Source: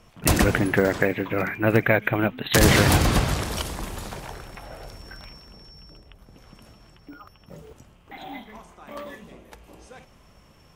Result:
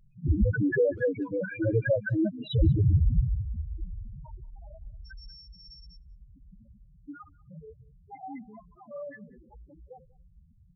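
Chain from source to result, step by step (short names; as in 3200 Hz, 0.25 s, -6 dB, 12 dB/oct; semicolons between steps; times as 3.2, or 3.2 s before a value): loudest bins only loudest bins 2; speakerphone echo 0.19 s, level -23 dB; band noise 110–180 Hz -71 dBFS; gain +2.5 dB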